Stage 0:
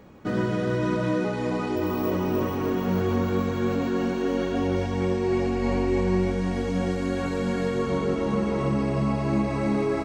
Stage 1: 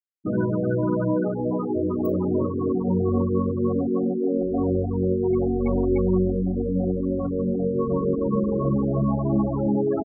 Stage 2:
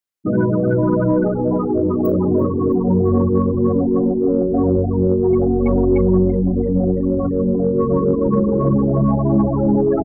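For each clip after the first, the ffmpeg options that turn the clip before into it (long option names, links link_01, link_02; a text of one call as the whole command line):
ffmpeg -i in.wav -af "afftfilt=real='re*gte(hypot(re,im),0.112)':imag='im*gte(hypot(re,im),0.112)':win_size=1024:overlap=0.75,volume=2.5dB" out.wav
ffmpeg -i in.wav -filter_complex "[0:a]asplit=7[link_01][link_02][link_03][link_04][link_05][link_06][link_07];[link_02]adelay=336,afreqshift=-100,volume=-19.5dB[link_08];[link_03]adelay=672,afreqshift=-200,volume=-23.5dB[link_09];[link_04]adelay=1008,afreqshift=-300,volume=-27.5dB[link_10];[link_05]adelay=1344,afreqshift=-400,volume=-31.5dB[link_11];[link_06]adelay=1680,afreqshift=-500,volume=-35.6dB[link_12];[link_07]adelay=2016,afreqshift=-600,volume=-39.6dB[link_13];[link_01][link_08][link_09][link_10][link_11][link_12][link_13]amix=inputs=7:normalize=0,acontrast=83" out.wav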